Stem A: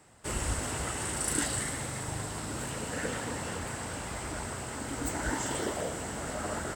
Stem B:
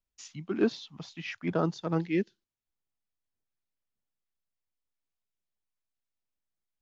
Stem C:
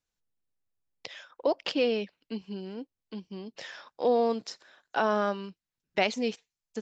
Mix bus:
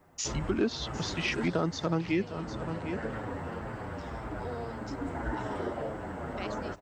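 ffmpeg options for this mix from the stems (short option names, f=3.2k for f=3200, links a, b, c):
-filter_complex "[0:a]lowpass=1.3k,asplit=2[a][b];[b]adelay=7.8,afreqshift=-1.8[c];[a][c]amix=inputs=2:normalize=1,volume=3dB,asplit=2[d][e];[e]volume=-15.5dB[f];[1:a]acontrast=86,volume=1dB,asplit=3[g][h][i];[g]atrim=end=2.33,asetpts=PTS-STARTPTS,afade=t=out:st=2.326:d=0.004:c=hsin[j];[h]atrim=start=2.33:end=3.1,asetpts=PTS-STARTPTS,volume=0[k];[i]atrim=start=3.1,asetpts=PTS-STARTPTS,afade=t=in:d=0.004:c=hsin[l];[j][k][l]concat=n=3:v=0:a=1,asplit=2[m][n];[n]volume=-16.5dB[o];[2:a]adelay=400,volume=-17dB[p];[f][o]amix=inputs=2:normalize=0,aecho=0:1:753:1[q];[d][m][p][q]amix=inputs=4:normalize=0,highshelf=f=4.2k:g=8.5,acompressor=threshold=-28dB:ratio=3"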